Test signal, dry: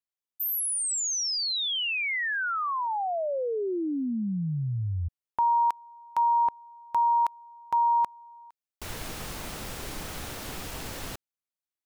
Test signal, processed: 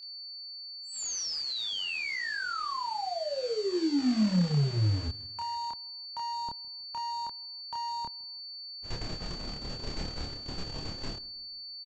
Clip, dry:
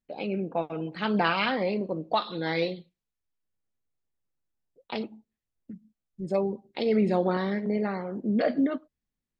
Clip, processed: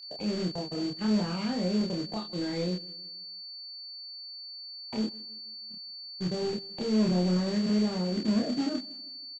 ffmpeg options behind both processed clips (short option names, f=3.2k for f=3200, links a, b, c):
-filter_complex "[0:a]agate=range=-35dB:threshold=-37dB:ratio=16:release=85:detection=peak,tiltshelf=f=760:g=5.5,acrossover=split=260[a][b];[a]asoftclip=type=tanh:threshold=-28dB[c];[b]acompressor=threshold=-35dB:ratio=6:attack=0.28:release=113:knee=1:detection=rms[d];[c][d]amix=inputs=2:normalize=0,asplit=2[e][f];[f]adelay=160,lowpass=f=1k:p=1,volume=-21dB,asplit=2[g][h];[h]adelay=160,lowpass=f=1k:p=1,volume=0.5,asplit=2[i][j];[j]adelay=160,lowpass=f=1k:p=1,volume=0.5,asplit=2[k][l];[l]adelay=160,lowpass=f=1k:p=1,volume=0.5[m];[e][g][i][k][m]amix=inputs=5:normalize=0,aresample=16000,acrusher=bits=4:mode=log:mix=0:aa=0.000001,aresample=44100,aeval=exprs='val(0)+0.00562*sin(2*PI*4500*n/s)':c=same,asplit=2[n][o];[o]adelay=28,volume=-2dB[p];[n][p]amix=inputs=2:normalize=0"